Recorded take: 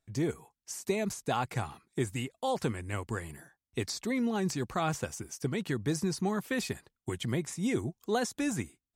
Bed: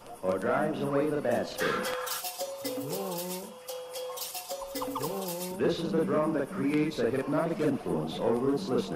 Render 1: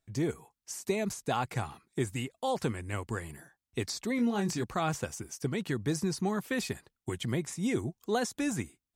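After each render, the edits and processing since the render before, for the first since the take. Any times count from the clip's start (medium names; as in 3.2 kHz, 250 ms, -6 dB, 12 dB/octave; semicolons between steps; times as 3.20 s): 4.16–4.64 s: doubling 25 ms -7 dB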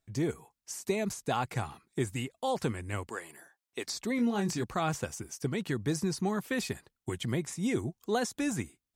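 3.09–3.87 s: high-pass 400 Hz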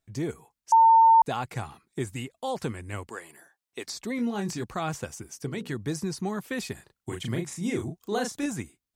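0.72–1.22 s: bleep 904 Hz -13 dBFS; 5.28–5.75 s: hum notches 60/120/180/240/300/360/420/480/540 Hz; 6.74–8.46 s: doubling 35 ms -4 dB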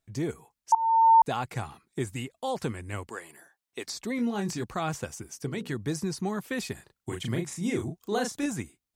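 0.75–1.16 s: fade in, from -18.5 dB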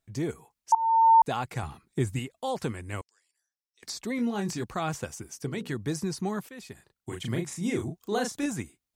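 1.63–2.19 s: bass shelf 190 Hz +9.5 dB; 3.01–3.83 s: band-pass filter 5.4 kHz, Q 11; 6.49–7.37 s: fade in, from -15.5 dB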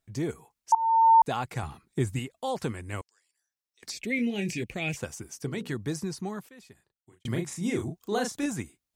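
3.91–4.97 s: FFT filter 550 Hz 0 dB, 1.2 kHz -22 dB, 2.4 kHz +15 dB, 3.9 kHz -2 dB; 5.73–7.25 s: fade out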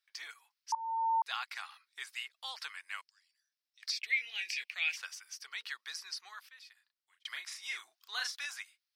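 high-pass 1.3 kHz 24 dB/octave; resonant high shelf 6 kHz -6 dB, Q 3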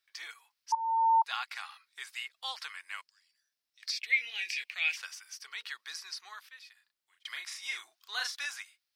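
harmonic-percussive split harmonic +6 dB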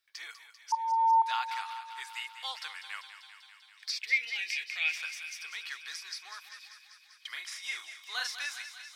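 thinning echo 196 ms, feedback 75%, high-pass 600 Hz, level -10.5 dB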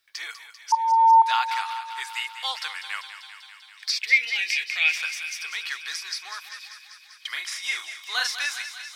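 trim +9 dB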